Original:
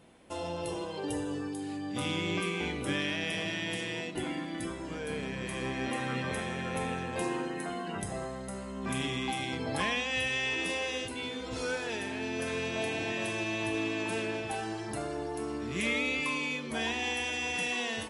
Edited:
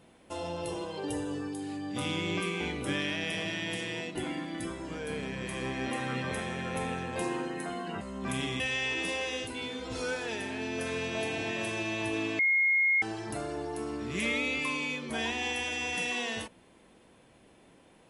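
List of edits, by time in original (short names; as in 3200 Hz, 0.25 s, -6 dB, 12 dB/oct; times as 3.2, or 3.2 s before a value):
8.01–8.62 cut
9.21–10.21 cut
14–14.63 bleep 2150 Hz -22 dBFS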